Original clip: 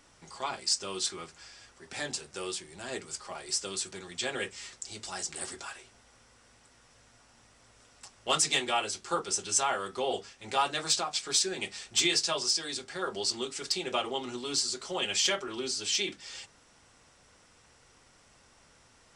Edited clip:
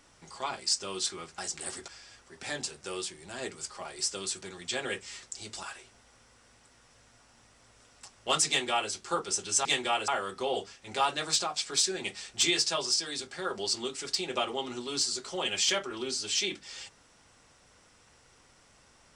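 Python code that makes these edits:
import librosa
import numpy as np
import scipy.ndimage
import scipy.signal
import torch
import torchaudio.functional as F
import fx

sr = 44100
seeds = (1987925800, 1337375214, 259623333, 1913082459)

y = fx.edit(x, sr, fx.move(start_s=5.13, length_s=0.5, to_s=1.38),
    fx.duplicate(start_s=8.48, length_s=0.43, to_s=9.65), tone=tone)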